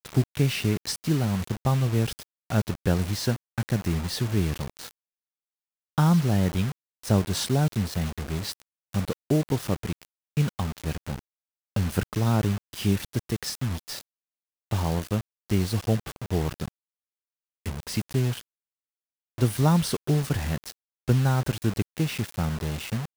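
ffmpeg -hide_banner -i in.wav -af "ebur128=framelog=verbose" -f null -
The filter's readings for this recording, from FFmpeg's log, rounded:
Integrated loudness:
  I:         -27.0 LUFS
  Threshold: -37.4 LUFS
Loudness range:
  LRA:         4.3 LU
  Threshold: -48.0 LUFS
  LRA low:   -30.1 LUFS
  LRA high:  -25.8 LUFS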